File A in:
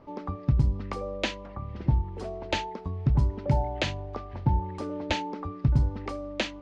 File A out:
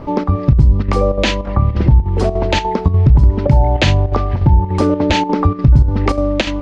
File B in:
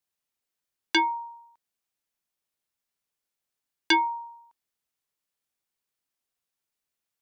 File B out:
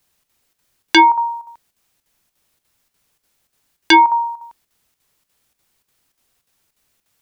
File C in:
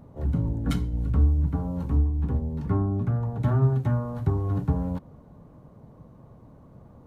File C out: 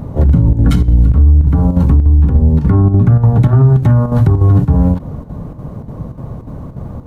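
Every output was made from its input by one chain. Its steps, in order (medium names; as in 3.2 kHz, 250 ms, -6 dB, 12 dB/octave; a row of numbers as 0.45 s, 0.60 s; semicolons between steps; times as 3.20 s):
bass shelf 170 Hz +7.5 dB; square tremolo 3.4 Hz, depth 60%, duty 80%; compression 2:1, threshold -27 dBFS; peak limiter -21.5 dBFS; peak normalisation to -2 dBFS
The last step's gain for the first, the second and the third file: +19.5 dB, +19.5 dB, +19.5 dB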